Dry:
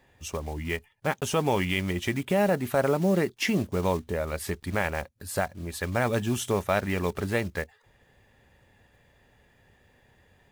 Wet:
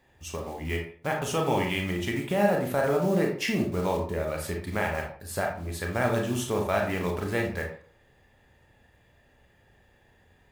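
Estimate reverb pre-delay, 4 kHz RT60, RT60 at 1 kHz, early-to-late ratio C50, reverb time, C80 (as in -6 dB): 26 ms, 0.30 s, 0.50 s, 6.0 dB, 0.50 s, 10.5 dB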